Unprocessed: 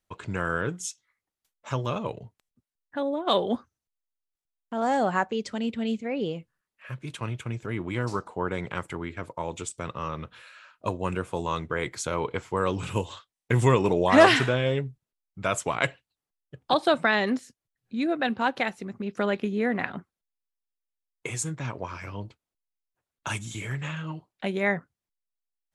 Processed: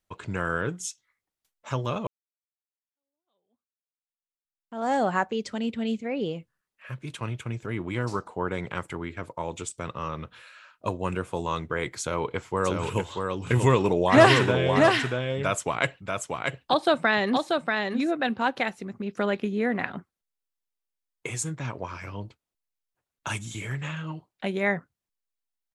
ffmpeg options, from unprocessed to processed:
-filter_complex "[0:a]asplit=3[a][b][c];[a]afade=t=out:st=12.64:d=0.02[d];[b]aecho=1:1:636:0.631,afade=t=in:st=12.64:d=0.02,afade=t=out:st=18.1:d=0.02[e];[c]afade=t=in:st=18.1:d=0.02[f];[d][e][f]amix=inputs=3:normalize=0,asplit=2[g][h];[g]atrim=end=2.07,asetpts=PTS-STARTPTS,afade=t=out:st=2.066:d=0.004:c=hsin[i];[h]atrim=start=2.07,asetpts=PTS-STARTPTS,afade=t=in:d=2.85:c=exp[j];[i][j]concat=n=2:v=0:a=1"

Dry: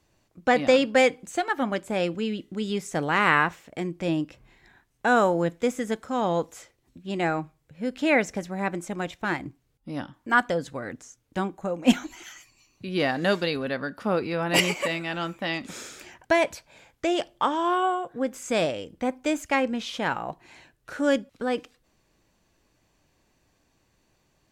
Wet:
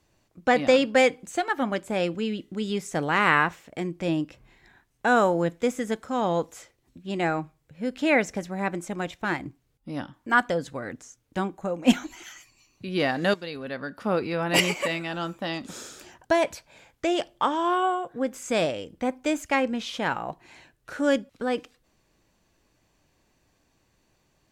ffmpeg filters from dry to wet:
-filter_complex "[0:a]asettb=1/sr,asplit=3[a][b][c];[a]atrim=end=15.074[d];[b]atrim=start=15.07:end=16.43,asetpts=PTS-STARTPTS,afade=t=in:d=0.004:c=qsin,afade=t=out:st=1.356:d=0.004:c=qsin,equalizer=f=2.2k:w=2.6:g=-8.5[e];[c]atrim=start=16.426[f];[d][e]acrossfade=d=0.004:c1=hsin:c2=qsin[g];[g][f]acrossfade=d=0.004:c1=qsin:c2=hsin,asplit=2[h][i];[h]atrim=end=13.34,asetpts=PTS-STARTPTS,afade=t=out:st=13.336:d=0.004:c=hsin:silence=0.223872[j];[i]atrim=start=13.34,asetpts=PTS-STARTPTS,afade=t=in:d=0.8:silence=0.223872[k];[j][k]concat=n=2:v=0:a=1"

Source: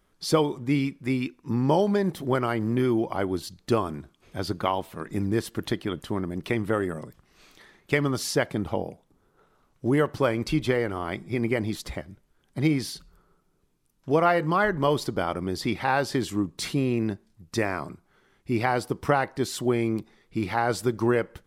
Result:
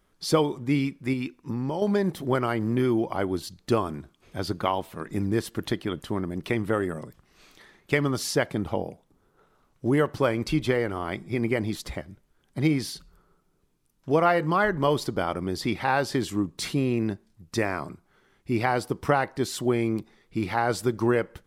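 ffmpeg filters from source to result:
-filter_complex "[0:a]asettb=1/sr,asplit=3[a][b][c];[a]atrim=end=1.134[d];[b]atrim=start=1.13:end=1.82,asetpts=PTS-STARTPTS,afade=t=in:d=0.004:c=qsin,afade=t=out:st=0.686:d=0.004:c=qsin,acompressor=threshold=-25dB:ratio=6:attack=3.2:release=140:knee=1:detection=peak[e];[c]atrim=start=1.816[f];[d][e]acrossfade=d=0.004:c1=hsin:c2=qsin[g];[g][f]acrossfade=d=0.004:c1=qsin:c2=hsin"

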